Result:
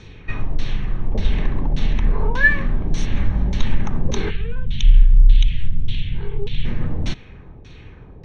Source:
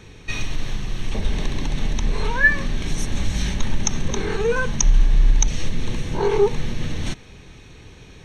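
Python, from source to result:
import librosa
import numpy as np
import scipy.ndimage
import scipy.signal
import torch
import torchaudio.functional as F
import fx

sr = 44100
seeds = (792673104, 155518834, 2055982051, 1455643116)

y = fx.low_shelf(x, sr, hz=200.0, db=5.5)
y = fx.filter_lfo_lowpass(y, sr, shape='saw_down', hz=1.7, low_hz=600.0, high_hz=5200.0, q=1.4)
y = fx.curve_eq(y, sr, hz=(110.0, 370.0, 960.0, 3300.0, 5600.0), db=(0, -17, -23, 7, -12), at=(4.29, 6.64), fade=0.02)
y = y * 10.0 ** (-1.0 / 20.0)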